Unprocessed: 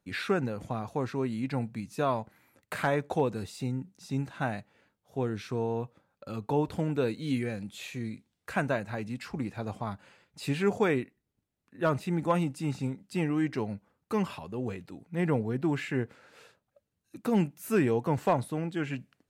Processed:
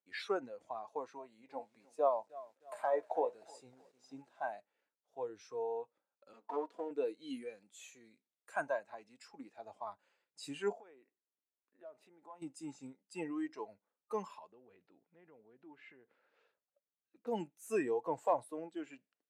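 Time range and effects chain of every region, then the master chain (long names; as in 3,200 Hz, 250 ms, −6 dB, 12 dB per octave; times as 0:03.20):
0:01.18–0:04.44: parametric band 650 Hz +7 dB 1.1 octaves + flanger 1.3 Hz, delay 5.5 ms, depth 5.8 ms, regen +67% + feedback echo at a low word length 309 ms, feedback 55%, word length 8 bits, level −14.5 dB
0:06.33–0:06.91: lower of the sound and its delayed copy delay 4.2 ms + high-pass filter 200 Hz 24 dB per octave + high-shelf EQ 5,000 Hz −6.5 dB
0:10.72–0:12.42: high-pass filter 460 Hz 6 dB per octave + tilt shelving filter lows +6.5 dB, about 1,300 Hz + downward compressor, threshold −38 dBFS
0:14.52–0:17.27: low-pass filter 3,100 Hz + low-shelf EQ 170 Hz +7 dB + downward compressor 5 to 1, threshold −36 dBFS
whole clip: noise reduction from a noise print of the clip's start 13 dB; Chebyshev band-pass filter 430–8,100 Hz, order 2; level −4.5 dB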